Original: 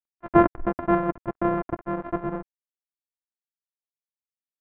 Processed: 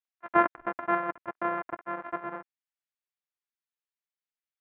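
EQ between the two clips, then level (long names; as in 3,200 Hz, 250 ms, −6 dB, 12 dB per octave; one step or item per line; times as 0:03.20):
resonant band-pass 1,900 Hz, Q 0.86
+2.0 dB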